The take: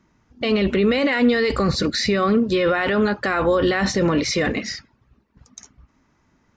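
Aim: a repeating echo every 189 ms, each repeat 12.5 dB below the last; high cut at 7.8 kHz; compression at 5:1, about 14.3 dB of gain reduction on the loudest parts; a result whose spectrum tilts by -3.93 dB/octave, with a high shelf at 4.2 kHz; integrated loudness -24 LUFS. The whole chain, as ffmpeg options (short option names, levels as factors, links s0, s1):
-af "lowpass=7800,highshelf=f=4200:g=-6.5,acompressor=threshold=0.0316:ratio=5,aecho=1:1:189|378|567:0.237|0.0569|0.0137,volume=2.51"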